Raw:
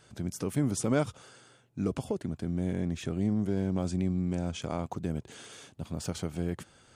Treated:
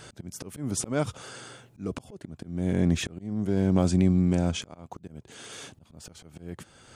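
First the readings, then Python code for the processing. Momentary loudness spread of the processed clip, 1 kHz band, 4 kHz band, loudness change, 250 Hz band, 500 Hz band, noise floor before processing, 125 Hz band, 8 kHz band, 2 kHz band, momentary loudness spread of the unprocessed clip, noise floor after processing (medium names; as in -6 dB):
22 LU, +1.5 dB, +5.5 dB, +5.5 dB, +3.5 dB, +2.0 dB, -61 dBFS, +4.0 dB, +4.5 dB, +3.5 dB, 11 LU, -58 dBFS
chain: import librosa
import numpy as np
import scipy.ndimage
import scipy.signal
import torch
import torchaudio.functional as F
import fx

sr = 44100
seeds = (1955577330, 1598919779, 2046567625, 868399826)

y = fx.auto_swell(x, sr, attack_ms=593.0)
y = fx.rider(y, sr, range_db=4, speed_s=2.0)
y = y * 10.0 ** (9.0 / 20.0)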